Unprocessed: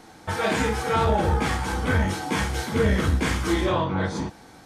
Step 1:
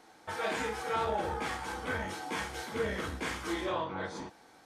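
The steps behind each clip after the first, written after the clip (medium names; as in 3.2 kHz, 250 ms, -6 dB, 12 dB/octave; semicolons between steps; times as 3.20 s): tone controls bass -12 dB, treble -2 dB; trim -8.5 dB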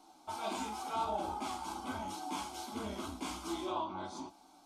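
flange 0.89 Hz, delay 6.4 ms, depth 2.5 ms, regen -43%; static phaser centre 480 Hz, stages 6; trim +3.5 dB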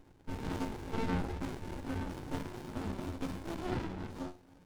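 feedback comb 90 Hz, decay 0.28 s, harmonics all, mix 90%; sliding maximum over 65 samples; trim +13 dB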